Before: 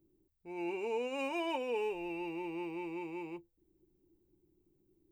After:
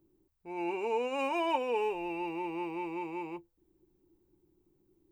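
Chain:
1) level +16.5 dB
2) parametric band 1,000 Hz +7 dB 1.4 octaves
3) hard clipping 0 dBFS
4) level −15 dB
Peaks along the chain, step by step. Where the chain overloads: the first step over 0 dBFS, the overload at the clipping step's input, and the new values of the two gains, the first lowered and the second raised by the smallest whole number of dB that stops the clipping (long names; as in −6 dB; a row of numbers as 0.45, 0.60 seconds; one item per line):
−8.5, −4.5, −4.5, −19.5 dBFS
no step passes full scale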